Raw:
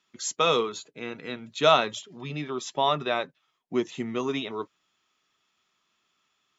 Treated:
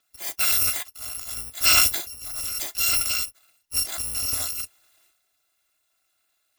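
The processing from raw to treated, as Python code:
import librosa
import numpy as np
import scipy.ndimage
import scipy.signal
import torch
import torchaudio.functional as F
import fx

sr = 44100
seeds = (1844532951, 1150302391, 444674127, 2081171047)

y = fx.bit_reversed(x, sr, seeds[0], block=256)
y = fx.transient(y, sr, attack_db=-1, sustain_db=11)
y = y * librosa.db_to_amplitude(1.0)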